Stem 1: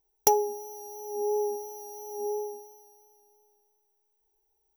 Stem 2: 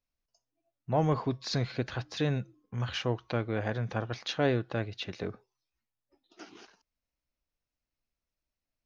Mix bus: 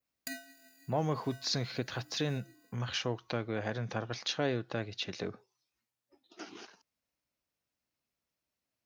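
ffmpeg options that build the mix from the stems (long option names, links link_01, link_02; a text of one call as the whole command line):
ffmpeg -i stem1.wav -i stem2.wav -filter_complex "[0:a]highpass=frequency=490:width=0.5412,highpass=frequency=490:width=1.3066,aphaser=in_gain=1:out_gain=1:delay=2.5:decay=0.48:speed=1.5:type=triangular,aeval=exprs='val(0)*sgn(sin(2*PI*1100*n/s))':channel_layout=same,volume=-19dB[link_01];[1:a]highpass=110,adynamicequalizer=threshold=0.002:dfrequency=5800:dqfactor=0.96:tfrequency=5800:tqfactor=0.96:attack=5:release=100:ratio=0.375:range=3.5:mode=boostabove:tftype=bell,volume=3dB[link_02];[link_01][link_02]amix=inputs=2:normalize=0,acompressor=threshold=-41dB:ratio=1.5" out.wav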